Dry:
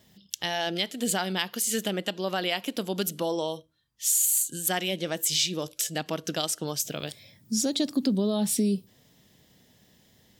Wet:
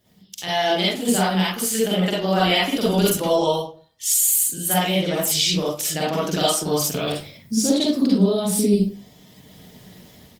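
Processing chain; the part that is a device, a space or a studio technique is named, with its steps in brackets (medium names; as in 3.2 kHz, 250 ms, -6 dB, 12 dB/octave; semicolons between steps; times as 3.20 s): speakerphone in a meeting room (reverberation RT60 0.40 s, pre-delay 41 ms, DRR -7 dB; speakerphone echo 90 ms, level -26 dB; level rider gain up to 14 dB; trim -5 dB; Opus 24 kbps 48 kHz)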